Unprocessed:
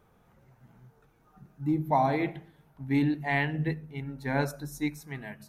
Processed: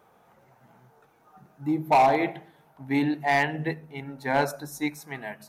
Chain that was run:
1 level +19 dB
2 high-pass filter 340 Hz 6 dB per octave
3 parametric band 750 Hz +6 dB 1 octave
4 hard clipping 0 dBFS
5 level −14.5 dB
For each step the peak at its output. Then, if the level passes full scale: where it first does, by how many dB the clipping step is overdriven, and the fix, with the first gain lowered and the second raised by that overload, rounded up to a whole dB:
+6.0, +5.0, +10.0, 0.0, −14.5 dBFS
step 1, 10.0 dB
step 1 +9 dB, step 5 −4.5 dB

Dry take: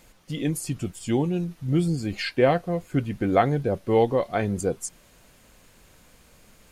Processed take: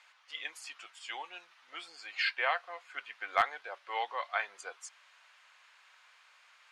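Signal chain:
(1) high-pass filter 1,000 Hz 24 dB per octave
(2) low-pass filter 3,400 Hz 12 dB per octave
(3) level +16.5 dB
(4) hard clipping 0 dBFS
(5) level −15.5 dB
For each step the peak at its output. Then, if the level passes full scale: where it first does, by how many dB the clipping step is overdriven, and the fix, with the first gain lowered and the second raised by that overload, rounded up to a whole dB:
−12.5, −12.5, +4.0, 0.0, −15.5 dBFS
step 3, 4.0 dB
step 3 +12.5 dB, step 5 −11.5 dB

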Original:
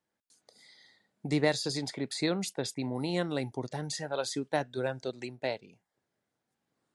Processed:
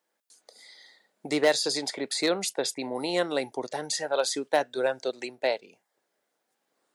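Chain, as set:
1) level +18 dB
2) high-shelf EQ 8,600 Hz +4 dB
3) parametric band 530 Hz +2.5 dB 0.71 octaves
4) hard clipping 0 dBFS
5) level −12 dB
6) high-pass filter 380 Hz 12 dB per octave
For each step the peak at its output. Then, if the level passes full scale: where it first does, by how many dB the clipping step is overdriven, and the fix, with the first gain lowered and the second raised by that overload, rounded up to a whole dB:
+5.0, +5.5, +6.0, 0.0, −12.0, −8.0 dBFS
step 1, 6.0 dB
step 1 +12 dB, step 5 −6 dB

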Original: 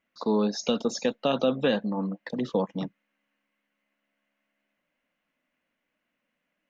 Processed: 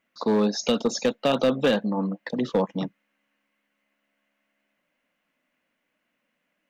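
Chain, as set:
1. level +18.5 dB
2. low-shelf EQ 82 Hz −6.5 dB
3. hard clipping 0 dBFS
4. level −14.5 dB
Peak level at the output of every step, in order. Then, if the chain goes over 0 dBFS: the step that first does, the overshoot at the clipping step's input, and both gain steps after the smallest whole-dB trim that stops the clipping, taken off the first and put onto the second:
+5.5, +5.5, 0.0, −14.5 dBFS
step 1, 5.5 dB
step 1 +12.5 dB, step 4 −8.5 dB

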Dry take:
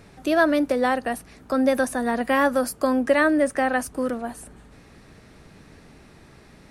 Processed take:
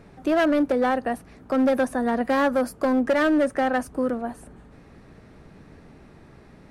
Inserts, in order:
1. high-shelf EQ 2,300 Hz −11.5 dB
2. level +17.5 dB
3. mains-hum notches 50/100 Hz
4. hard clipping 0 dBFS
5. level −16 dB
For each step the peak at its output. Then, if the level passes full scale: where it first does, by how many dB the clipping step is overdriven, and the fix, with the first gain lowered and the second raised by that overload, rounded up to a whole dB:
−9.5, +8.0, +8.0, 0.0, −16.0 dBFS
step 2, 8.0 dB
step 2 +9.5 dB, step 5 −8 dB

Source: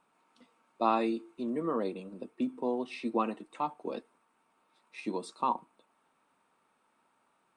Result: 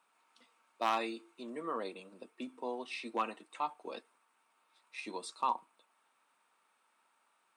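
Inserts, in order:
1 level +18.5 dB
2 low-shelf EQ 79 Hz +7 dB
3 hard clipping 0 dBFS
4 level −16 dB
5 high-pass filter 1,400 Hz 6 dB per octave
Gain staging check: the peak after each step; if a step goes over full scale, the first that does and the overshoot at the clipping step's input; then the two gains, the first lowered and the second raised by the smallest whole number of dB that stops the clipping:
+6.0, +6.5, 0.0, −16.0, −16.5 dBFS
step 1, 6.5 dB
step 1 +11.5 dB, step 4 −9 dB

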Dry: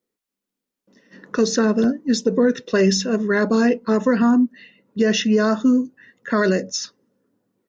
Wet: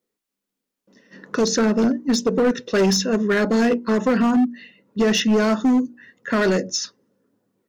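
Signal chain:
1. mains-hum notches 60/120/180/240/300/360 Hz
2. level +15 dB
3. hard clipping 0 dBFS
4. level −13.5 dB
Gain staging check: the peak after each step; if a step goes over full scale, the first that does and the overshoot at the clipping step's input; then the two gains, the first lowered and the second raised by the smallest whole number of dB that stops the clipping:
−7.0, +8.0, 0.0, −13.5 dBFS
step 2, 8.0 dB
step 2 +7 dB, step 4 −5.5 dB

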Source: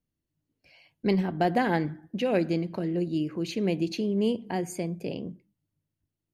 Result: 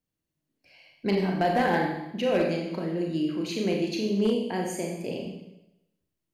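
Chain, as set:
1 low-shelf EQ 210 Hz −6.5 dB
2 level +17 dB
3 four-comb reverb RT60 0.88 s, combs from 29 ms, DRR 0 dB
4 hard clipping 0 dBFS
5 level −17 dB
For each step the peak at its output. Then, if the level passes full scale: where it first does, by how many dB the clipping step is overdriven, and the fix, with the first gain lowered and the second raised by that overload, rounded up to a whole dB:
−13.0, +4.0, +5.5, 0.0, −17.0 dBFS
step 2, 5.5 dB
step 2 +11 dB, step 5 −11 dB

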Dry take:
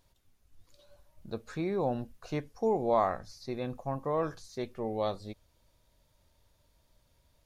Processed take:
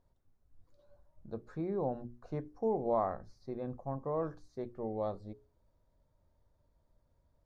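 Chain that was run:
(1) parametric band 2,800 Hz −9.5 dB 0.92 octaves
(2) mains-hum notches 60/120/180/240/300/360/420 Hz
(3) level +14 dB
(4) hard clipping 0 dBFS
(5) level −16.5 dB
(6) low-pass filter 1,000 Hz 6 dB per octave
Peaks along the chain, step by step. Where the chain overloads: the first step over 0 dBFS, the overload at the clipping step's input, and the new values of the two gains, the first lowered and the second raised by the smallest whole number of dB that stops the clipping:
−15.5, −15.5, −1.5, −1.5, −18.0, −20.0 dBFS
no step passes full scale

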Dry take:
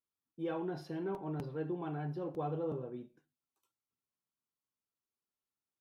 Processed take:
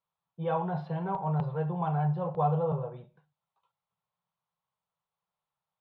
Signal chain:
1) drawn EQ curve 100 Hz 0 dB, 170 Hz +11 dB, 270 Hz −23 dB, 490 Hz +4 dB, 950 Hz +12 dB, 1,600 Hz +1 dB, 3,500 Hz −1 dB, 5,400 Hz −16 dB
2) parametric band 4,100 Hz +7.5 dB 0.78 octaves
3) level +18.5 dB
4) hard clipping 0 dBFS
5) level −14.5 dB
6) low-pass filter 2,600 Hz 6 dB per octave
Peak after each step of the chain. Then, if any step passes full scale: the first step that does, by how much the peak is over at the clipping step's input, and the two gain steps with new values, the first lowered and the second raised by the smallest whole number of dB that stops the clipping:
−20.5, −20.5, −2.0, −2.0, −16.5, −17.0 dBFS
no step passes full scale

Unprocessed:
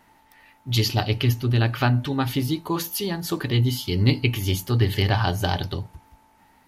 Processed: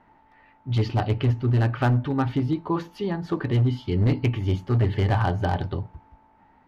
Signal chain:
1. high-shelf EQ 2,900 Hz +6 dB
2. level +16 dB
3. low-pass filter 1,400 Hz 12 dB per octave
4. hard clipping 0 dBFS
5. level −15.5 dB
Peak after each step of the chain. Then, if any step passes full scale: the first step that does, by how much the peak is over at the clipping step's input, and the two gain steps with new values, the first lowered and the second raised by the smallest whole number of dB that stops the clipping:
−3.5, +12.5, +9.5, 0.0, −15.5 dBFS
step 2, 9.5 dB
step 2 +6 dB, step 5 −5.5 dB

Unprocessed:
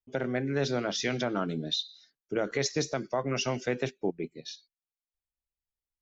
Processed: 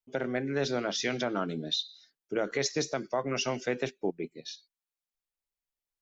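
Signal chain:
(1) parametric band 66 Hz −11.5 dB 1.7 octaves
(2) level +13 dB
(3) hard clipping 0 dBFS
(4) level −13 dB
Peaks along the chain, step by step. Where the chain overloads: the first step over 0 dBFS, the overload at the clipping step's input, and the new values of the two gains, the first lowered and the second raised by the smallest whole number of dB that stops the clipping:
−16.5, −3.5, −3.5, −16.5 dBFS
no step passes full scale

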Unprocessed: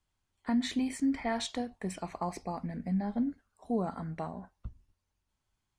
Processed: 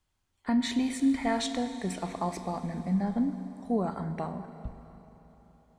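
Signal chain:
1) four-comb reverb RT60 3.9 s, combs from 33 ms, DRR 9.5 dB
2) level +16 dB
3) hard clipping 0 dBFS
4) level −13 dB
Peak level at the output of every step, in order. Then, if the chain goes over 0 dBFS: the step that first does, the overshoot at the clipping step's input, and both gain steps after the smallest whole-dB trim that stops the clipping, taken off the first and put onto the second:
−19.0, −3.0, −3.0, −16.0 dBFS
no step passes full scale

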